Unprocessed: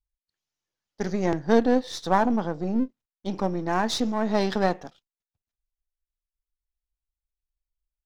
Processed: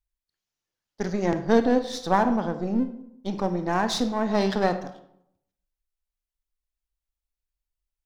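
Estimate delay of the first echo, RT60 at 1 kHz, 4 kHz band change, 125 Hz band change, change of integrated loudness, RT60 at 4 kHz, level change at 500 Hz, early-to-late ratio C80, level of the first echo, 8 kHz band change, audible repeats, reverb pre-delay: none, 0.70 s, +0.5 dB, +0.5 dB, +0.5 dB, 0.45 s, +0.5 dB, 14.5 dB, none, +0.5 dB, none, 29 ms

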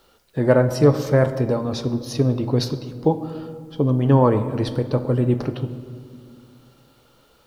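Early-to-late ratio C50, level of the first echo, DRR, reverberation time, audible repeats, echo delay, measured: 11.0 dB, none, 9.0 dB, 2.1 s, none, none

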